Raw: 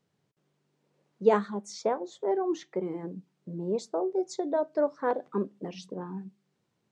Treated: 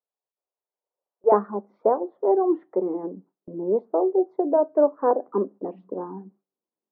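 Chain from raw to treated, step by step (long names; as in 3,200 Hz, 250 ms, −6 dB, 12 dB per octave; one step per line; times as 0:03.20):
high-pass filter 530 Hz 24 dB per octave, from 0:01.32 250 Hz
noise gate with hold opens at −48 dBFS
low-pass filter 1,100 Hz 24 dB per octave
level +8 dB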